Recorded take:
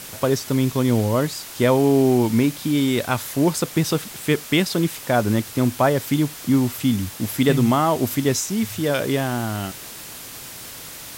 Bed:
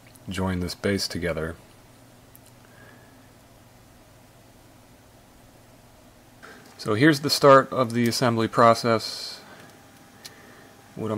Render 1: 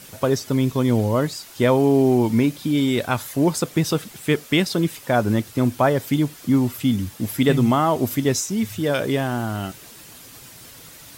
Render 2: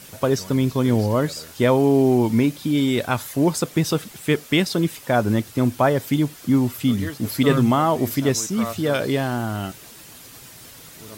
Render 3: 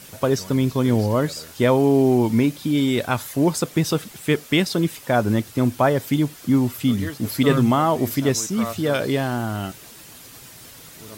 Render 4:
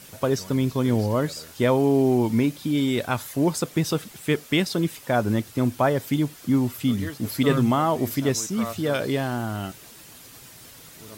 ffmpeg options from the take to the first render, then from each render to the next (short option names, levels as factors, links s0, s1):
-af "afftdn=nr=8:nf=-37"
-filter_complex "[1:a]volume=0.188[s0];[0:a][s0]amix=inputs=2:normalize=0"
-af anull
-af "volume=0.708"